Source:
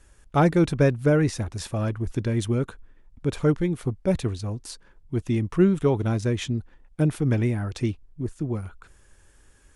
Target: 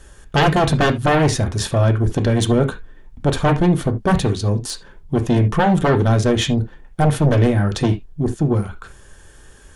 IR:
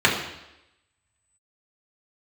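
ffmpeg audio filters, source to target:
-filter_complex "[0:a]aeval=exprs='0.422*sin(PI/2*3.98*val(0)/0.422)':channel_layout=same,asplit=2[link_01][link_02];[1:a]atrim=start_sample=2205,afade=type=out:start_time=0.13:duration=0.01,atrim=end_sample=6174[link_03];[link_02][link_03]afir=irnorm=-1:irlink=0,volume=-23dB[link_04];[link_01][link_04]amix=inputs=2:normalize=0,volume=-5.5dB"

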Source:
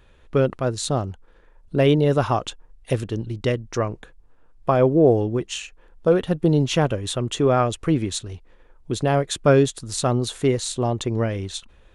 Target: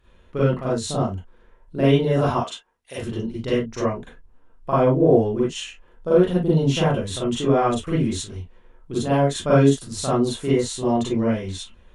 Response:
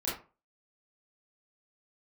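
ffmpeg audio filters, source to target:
-filter_complex "[0:a]asettb=1/sr,asplit=3[link_01][link_02][link_03];[link_01]atrim=end=2.344[link_04];[link_02]atrim=start=2.34:end=2.98,asetpts=PTS-STARTPTS,afade=type=in:duration=0.004:curve=qsin,afade=type=out:start_time=0.636:duration=0.004:curve=qsin,highpass=frequency=1000:poles=1[link_05];[link_03]atrim=start=2.976[link_06];[link_04][link_05]acrossfade=duration=0.004:curve1=hsin:curve2=qsin[link_07];[link_07][link_06]acrossfade=duration=0.004:curve1=qsin:curve2=hsin[link_08];[1:a]atrim=start_sample=2205,atrim=end_sample=3087,asetrate=30429,aresample=44100[link_09];[link_08][link_09]afir=irnorm=-1:irlink=0,volume=-7.5dB"

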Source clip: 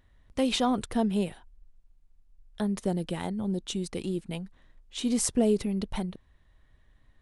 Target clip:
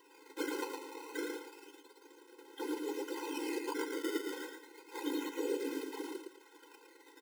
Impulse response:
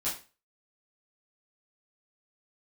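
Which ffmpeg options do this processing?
-filter_complex "[0:a]lowpass=3200,lowshelf=frequency=100:gain=12,acompressor=threshold=-44dB:ratio=1.5,alimiter=level_in=10.5dB:limit=-24dB:level=0:latency=1:release=97,volume=-10.5dB,acrusher=bits=4:mode=log:mix=0:aa=0.000001,asettb=1/sr,asplit=3[link_01][link_02][link_03];[link_01]atrim=end=0.644[link_04];[link_02]atrim=start=0.64:end=1.15,asetpts=PTS-STARTPTS,afade=type=in:duration=0.004:curve=qsin,afade=type=out:start_time=0.506:duration=0.004:curve=qsin,aeval=exprs='(mod(266*val(0)+1,2)-1)/266':channel_layout=same[link_05];[link_03]atrim=start=1.146[link_06];[link_04][link_05]acrossfade=duration=0.004:curve1=hsin:curve2=qsin[link_07];[link_07][link_06]acrossfade=duration=0.004:curve1=qsin:curve2=hsin,afftfilt=real='hypot(re,im)*cos(2*PI*random(0))':imag='hypot(re,im)*sin(2*PI*random(1))':win_size=512:overlap=0.75,acrusher=samples=15:mix=1:aa=0.000001:lfo=1:lforange=24:lforate=0.3,aecho=1:1:112|224|336|448:0.631|0.17|0.046|0.0124,afftfilt=real='re*eq(mod(floor(b*sr/1024/270),2),1)':imag='im*eq(mod(floor(b*sr/1024/270),2),1)':win_size=1024:overlap=0.75,volume=15.5dB"

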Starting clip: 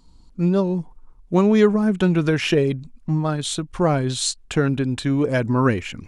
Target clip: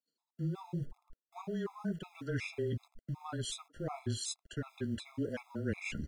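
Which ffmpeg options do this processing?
ffmpeg -i in.wav -filter_complex "[0:a]agate=range=-33dB:threshold=-36dB:ratio=3:detection=peak,areverse,acompressor=threshold=-31dB:ratio=8,areverse,flanger=delay=3.4:depth=9.4:regen=-25:speed=0.92:shape=sinusoidal,afreqshift=-18,acrossover=split=310|1600[link_01][link_02][link_03];[link_01]aeval=exprs='val(0)*gte(abs(val(0)),0.002)':channel_layout=same[link_04];[link_02]aecho=1:1:90:0.0668[link_05];[link_04][link_05][link_03]amix=inputs=3:normalize=0,afftfilt=real='re*gt(sin(2*PI*2.7*pts/sr)*(1-2*mod(floor(b*sr/1024/680),2)),0)':imag='im*gt(sin(2*PI*2.7*pts/sr)*(1-2*mod(floor(b*sr/1024/680),2)),0)':win_size=1024:overlap=0.75,volume=1.5dB" out.wav

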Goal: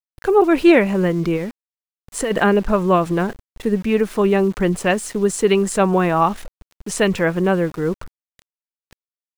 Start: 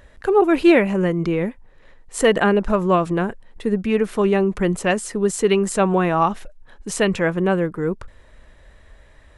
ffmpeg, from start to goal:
ffmpeg -i in.wav -filter_complex "[0:a]asplit=3[link_01][link_02][link_03];[link_01]afade=type=out:start_time=1.36:duration=0.02[link_04];[link_02]acompressor=threshold=-22dB:ratio=6,afade=type=in:start_time=1.36:duration=0.02,afade=type=out:start_time=2.3:duration=0.02[link_05];[link_03]afade=type=in:start_time=2.3:duration=0.02[link_06];[link_04][link_05][link_06]amix=inputs=3:normalize=0,aeval=exprs='val(0)*gte(abs(val(0)),0.015)':channel_layout=same,volume=1.5dB" out.wav

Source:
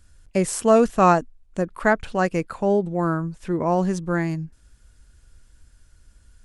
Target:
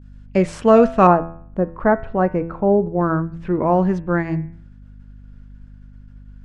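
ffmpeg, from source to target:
ffmpeg -i in.wav -af "asetnsamples=nb_out_samples=441:pad=0,asendcmd='1.07 lowpass f 1100;3.01 lowpass f 2200',lowpass=3100,bandreject=frequency=83.34:width_type=h:width=4,bandreject=frequency=166.68:width_type=h:width=4,bandreject=frequency=250.02:width_type=h:width=4,bandreject=frequency=333.36:width_type=h:width=4,bandreject=frequency=416.7:width_type=h:width=4,bandreject=frequency=500.04:width_type=h:width=4,bandreject=frequency=583.38:width_type=h:width=4,bandreject=frequency=666.72:width_type=h:width=4,bandreject=frequency=750.06:width_type=h:width=4,bandreject=frequency=833.4:width_type=h:width=4,bandreject=frequency=916.74:width_type=h:width=4,bandreject=frequency=1000.08:width_type=h:width=4,bandreject=frequency=1083.42:width_type=h:width=4,bandreject=frequency=1166.76:width_type=h:width=4,bandreject=frequency=1250.1:width_type=h:width=4,bandreject=frequency=1333.44:width_type=h:width=4,bandreject=frequency=1416.78:width_type=h:width=4,bandreject=frequency=1500.12:width_type=h:width=4,bandreject=frequency=1583.46:width_type=h:width=4,bandreject=frequency=1666.8:width_type=h:width=4,bandreject=frequency=1750.14:width_type=h:width=4,bandreject=frequency=1833.48:width_type=h:width=4,bandreject=frequency=1916.82:width_type=h:width=4,bandreject=frequency=2000.16:width_type=h:width=4,bandreject=frequency=2083.5:width_type=h:width=4,bandreject=frequency=2166.84:width_type=h:width=4,bandreject=frequency=2250.18:width_type=h:width=4,bandreject=frequency=2333.52:width_type=h:width=4,bandreject=frequency=2416.86:width_type=h:width=4,bandreject=frequency=2500.2:width_type=h:width=4,bandreject=frequency=2583.54:width_type=h:width=4,bandreject=frequency=2666.88:width_type=h:width=4,bandreject=frequency=2750.22:width_type=h:width=4,bandreject=frequency=2833.56:width_type=h:width=4,agate=range=-33dB:threshold=-48dB:ratio=3:detection=peak,aeval=exprs='val(0)+0.00562*(sin(2*PI*50*n/s)+sin(2*PI*2*50*n/s)/2+sin(2*PI*3*50*n/s)/3+sin(2*PI*4*50*n/s)/4+sin(2*PI*5*50*n/s)/5)':channel_layout=same,volume=4.5dB" out.wav

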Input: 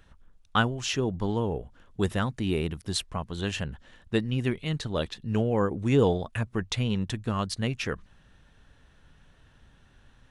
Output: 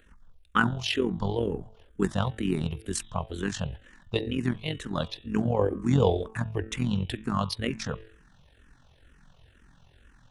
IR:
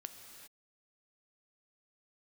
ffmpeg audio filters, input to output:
-filter_complex "[0:a]bandreject=frequency=110.5:width_type=h:width=4,bandreject=frequency=221:width_type=h:width=4,bandreject=frequency=331.5:width_type=h:width=4,bandreject=frequency=442:width_type=h:width=4,bandreject=frequency=552.5:width_type=h:width=4,bandreject=frequency=663:width_type=h:width=4,bandreject=frequency=773.5:width_type=h:width=4,bandreject=frequency=884:width_type=h:width=4,bandreject=frequency=994.5:width_type=h:width=4,bandreject=frequency=1105:width_type=h:width=4,bandreject=frequency=1215.5:width_type=h:width=4,bandreject=frequency=1326:width_type=h:width=4,bandreject=frequency=1436.5:width_type=h:width=4,bandreject=frequency=1547:width_type=h:width=4,bandreject=frequency=1657.5:width_type=h:width=4,bandreject=frequency=1768:width_type=h:width=4,bandreject=frequency=1878.5:width_type=h:width=4,bandreject=frequency=1989:width_type=h:width=4,bandreject=frequency=2099.5:width_type=h:width=4,bandreject=frequency=2210:width_type=h:width=4,bandreject=frequency=2320.5:width_type=h:width=4,bandreject=frequency=2431:width_type=h:width=4,bandreject=frequency=2541.5:width_type=h:width=4,bandreject=frequency=2652:width_type=h:width=4,bandreject=frequency=2762.5:width_type=h:width=4,bandreject=frequency=2873:width_type=h:width=4,bandreject=frequency=2983.5:width_type=h:width=4,bandreject=frequency=3094:width_type=h:width=4,bandreject=frequency=3204.5:width_type=h:width=4,bandreject=frequency=3315:width_type=h:width=4,bandreject=frequency=3425.5:width_type=h:width=4,bandreject=frequency=3536:width_type=h:width=4,bandreject=frequency=3646.5:width_type=h:width=4,bandreject=frequency=3757:width_type=h:width=4,bandreject=frequency=3867.5:width_type=h:width=4,tremolo=f=44:d=0.667,asplit=2[link_01][link_02];[link_02]afreqshift=-2.1[link_03];[link_01][link_03]amix=inputs=2:normalize=1,volume=6dB"

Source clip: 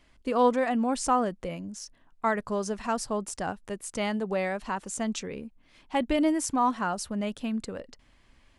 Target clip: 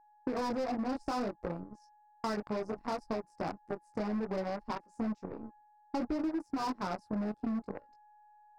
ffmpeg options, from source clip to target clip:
ffmpeg -i in.wav -af "flanger=delay=17.5:depth=6.2:speed=0.62,afwtdn=0.0251,agate=range=-33dB:threshold=-57dB:ratio=3:detection=peak,aeval=exprs='val(0)+0.002*sin(2*PI*840*n/s)':channel_layout=same,volume=29.5dB,asoftclip=hard,volume=-29.5dB,areverse,acompressor=mode=upward:threshold=-50dB:ratio=2.5,areverse,highshelf=frequency=2400:gain=-9.5,aeval=exprs='0.0335*(cos(1*acos(clip(val(0)/0.0335,-1,1)))-cos(1*PI/2))+0.00841*(cos(3*acos(clip(val(0)/0.0335,-1,1)))-cos(3*PI/2))+0.00133*(cos(6*acos(clip(val(0)/0.0335,-1,1)))-cos(6*PI/2))':channel_layout=same,equalizer=frequency=315:width_type=o:width=0.33:gain=5,equalizer=frequency=3150:width_type=o:width=0.33:gain=-8,equalizer=frequency=5000:width_type=o:width=0.33:gain=10,acompressor=threshold=-37dB:ratio=6,volume=5.5dB" out.wav

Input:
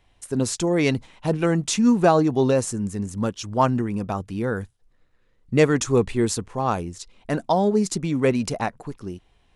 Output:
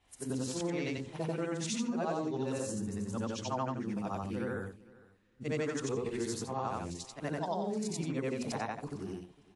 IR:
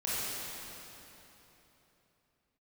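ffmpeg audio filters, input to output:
-filter_complex "[0:a]afftfilt=real='re':imag='-im':win_size=8192:overlap=0.75,highpass=frequency=86:poles=1,bandreject=frequency=60:width_type=h:width=6,bandreject=frequency=120:width_type=h:width=6,bandreject=frequency=180:width_type=h:width=6,bandreject=frequency=240:width_type=h:width=6,bandreject=frequency=300:width_type=h:width=6,bandreject=frequency=360:width_type=h:width=6,bandreject=frequency=420:width_type=h:width=6,bandreject=frequency=480:width_type=h:width=6,bandreject=frequency=540:width_type=h:width=6,bandreject=frequency=600:width_type=h:width=6,acompressor=threshold=-33dB:ratio=4,adynamicequalizer=threshold=0.00112:dfrequency=9500:dqfactor=1.3:tfrequency=9500:tqfactor=1.3:attack=5:release=100:ratio=0.375:range=4:mode=cutabove:tftype=bell,asplit=2[link_01][link_02];[link_02]aecho=0:1:455|910:0.0794|0.0127[link_03];[link_01][link_03]amix=inputs=2:normalize=0" -ar 48000 -c:a wmav2 -b:a 64k

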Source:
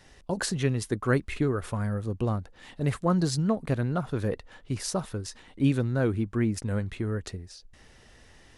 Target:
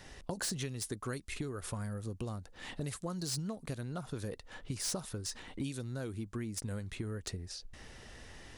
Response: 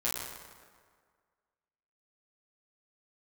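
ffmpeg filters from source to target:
-filter_complex "[0:a]acrossover=split=4300[link_01][link_02];[link_01]acompressor=threshold=-39dB:ratio=12[link_03];[link_02]asoftclip=type=hard:threshold=-37.5dB[link_04];[link_03][link_04]amix=inputs=2:normalize=0,volume=3dB"

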